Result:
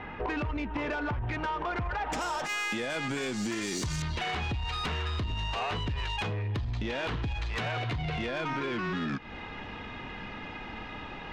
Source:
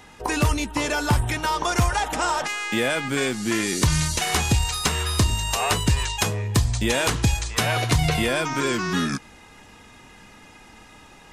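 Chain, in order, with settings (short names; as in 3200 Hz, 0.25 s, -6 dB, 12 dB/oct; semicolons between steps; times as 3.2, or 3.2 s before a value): LPF 2500 Hz 24 dB/oct, from 2.12 s 7500 Hz, from 4.02 s 3500 Hz; limiter -18 dBFS, peak gain reduction 8.5 dB; compressor 16:1, threshold -34 dBFS, peak gain reduction 13.5 dB; soft clip -33.5 dBFS, distortion -17 dB; gain +7.5 dB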